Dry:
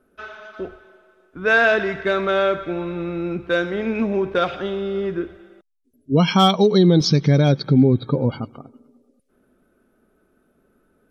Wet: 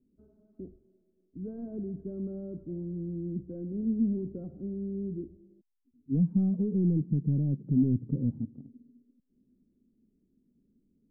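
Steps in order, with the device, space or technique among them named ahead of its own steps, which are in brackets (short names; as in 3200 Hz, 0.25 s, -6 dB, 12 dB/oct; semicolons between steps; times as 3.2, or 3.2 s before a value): 6.73–7.77 low shelf 160 Hz -5 dB; overdriven synthesiser ladder filter (soft clip -13.5 dBFS, distortion -12 dB; ladder low-pass 290 Hz, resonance 40%)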